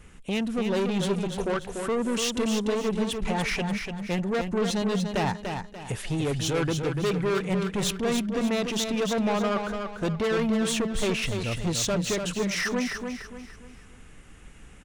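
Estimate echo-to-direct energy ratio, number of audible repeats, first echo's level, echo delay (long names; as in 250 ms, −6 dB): −5.5 dB, 4, −6.0 dB, 292 ms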